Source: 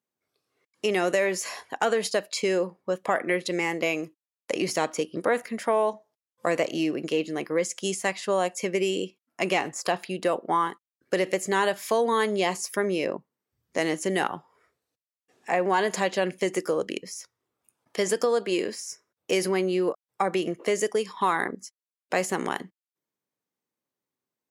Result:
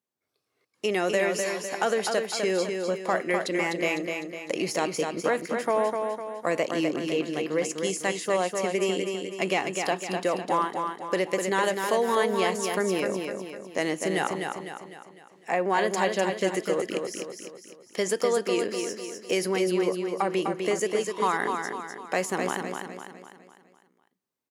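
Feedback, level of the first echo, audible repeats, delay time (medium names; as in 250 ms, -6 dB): 47%, -5.0 dB, 5, 252 ms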